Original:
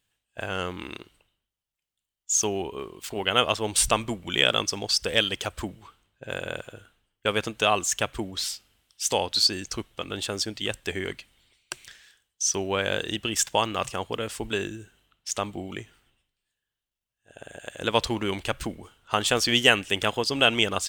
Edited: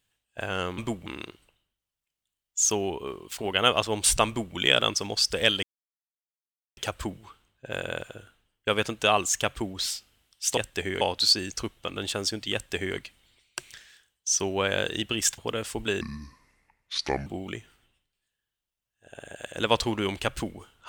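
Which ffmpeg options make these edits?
-filter_complex "[0:a]asplit=9[a][b][c][d][e][f][g][h][i];[a]atrim=end=0.782[j];[b]atrim=start=3.988:end=4.272[k];[c]atrim=start=0.778:end=5.35,asetpts=PTS-STARTPTS,afade=t=out:st=4.568:d=0.004:c=hsin,apad=pad_dur=1.14[l];[d]atrim=start=5.35:end=9.152,asetpts=PTS-STARTPTS,afade=t=in:d=0.004:c=hsin[m];[e]atrim=start=10.668:end=11.112[n];[f]atrim=start=9.148:end=13.522[o];[g]atrim=start=14.028:end=14.664[p];[h]atrim=start=14.66:end=15.5,asetpts=PTS-STARTPTS,asetrate=29547,aresample=44100[q];[i]atrim=start=15.496[r];[j][k]acrossfade=d=0.004:c1=hsin:c2=hsin[s];[l][m]concat=n=2:v=0:a=1[t];[s][t]acrossfade=d=0.004:c1=hsin:c2=hsin[u];[u][n]acrossfade=d=0.004:c1=hsin:c2=hsin[v];[v][o]acrossfade=d=0.004:c1=hsin:c2=hsin[w];[w][p]acrossfade=d=0.004:c1=hsin:c2=hsin[x];[x][q]acrossfade=d=0.004:c1=hsin:c2=hsin[y];[y][r]acrossfade=d=0.004:c1=hsin:c2=hsin"

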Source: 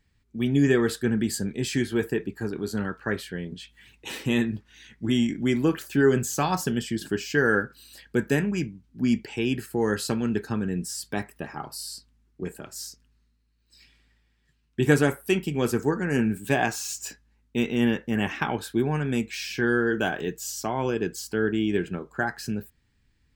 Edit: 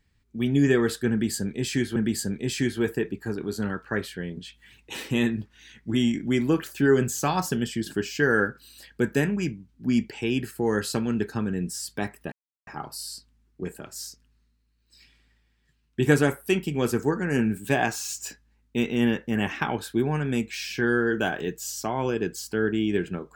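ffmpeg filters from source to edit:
-filter_complex "[0:a]asplit=3[a][b][c];[a]atrim=end=1.962[d];[b]atrim=start=1.108:end=11.47,asetpts=PTS-STARTPTS,afade=t=out:st=10.358:d=0.004:c=hsin,apad=pad_dur=0.35[e];[c]atrim=start=11.47,asetpts=PTS-STARTPTS,afade=t=in:d=0.004:c=hsin[f];[e][f]concat=n=2:v=0:a=1[g];[d][g]acrossfade=d=0.004:c1=hsin:c2=hsin"

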